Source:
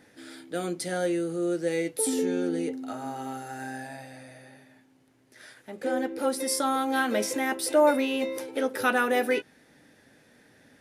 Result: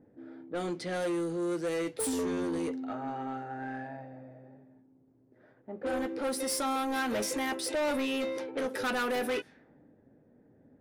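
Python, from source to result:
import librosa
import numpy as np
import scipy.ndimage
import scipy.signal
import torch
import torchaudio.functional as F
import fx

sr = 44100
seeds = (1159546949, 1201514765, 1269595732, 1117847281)

y = fx.env_lowpass(x, sr, base_hz=470.0, full_db=-24.5)
y = 10.0 ** (-27.5 / 20.0) * np.tanh(y / 10.0 ** (-27.5 / 20.0))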